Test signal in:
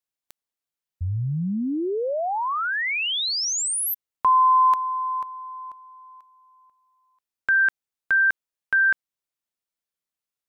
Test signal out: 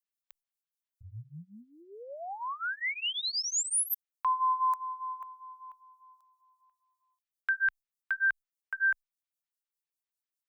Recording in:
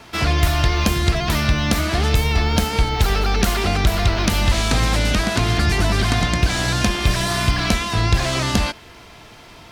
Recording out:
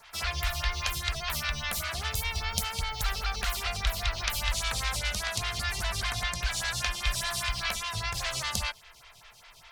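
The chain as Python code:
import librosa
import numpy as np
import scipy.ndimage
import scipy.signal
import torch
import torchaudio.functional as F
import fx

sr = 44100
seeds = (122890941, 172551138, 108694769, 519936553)

y = fx.tone_stack(x, sr, knobs='10-0-10')
y = fx.stagger_phaser(y, sr, hz=5.0)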